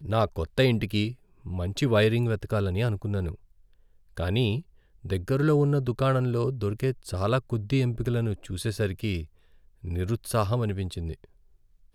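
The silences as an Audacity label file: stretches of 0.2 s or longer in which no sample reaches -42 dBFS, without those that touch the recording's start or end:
1.140000	1.460000	silence
3.350000	4.170000	silence
4.610000	5.050000	silence
9.250000	9.840000	silence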